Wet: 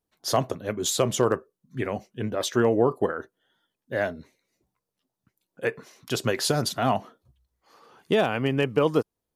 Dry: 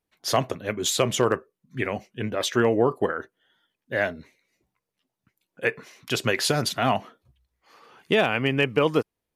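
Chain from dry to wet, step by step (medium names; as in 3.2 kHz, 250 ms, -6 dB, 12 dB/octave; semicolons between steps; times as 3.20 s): peaking EQ 2.3 kHz -8 dB 1.1 oct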